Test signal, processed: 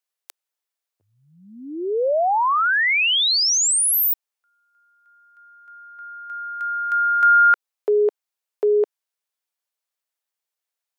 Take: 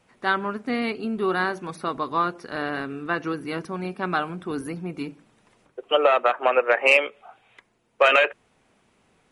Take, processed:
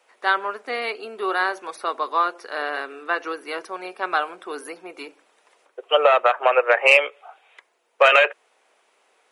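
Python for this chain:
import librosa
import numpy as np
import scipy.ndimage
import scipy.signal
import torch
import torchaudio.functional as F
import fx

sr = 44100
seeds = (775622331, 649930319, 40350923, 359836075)

y = scipy.signal.sosfilt(scipy.signal.butter(4, 440.0, 'highpass', fs=sr, output='sos'), x)
y = F.gain(torch.from_numpy(y), 3.0).numpy()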